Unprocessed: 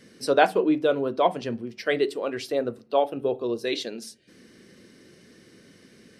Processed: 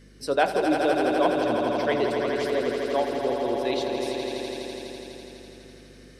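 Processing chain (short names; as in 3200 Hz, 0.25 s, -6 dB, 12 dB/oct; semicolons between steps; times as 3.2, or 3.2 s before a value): swelling echo 83 ms, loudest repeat 5, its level -7.5 dB; hum 50 Hz, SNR 27 dB; gain -3.5 dB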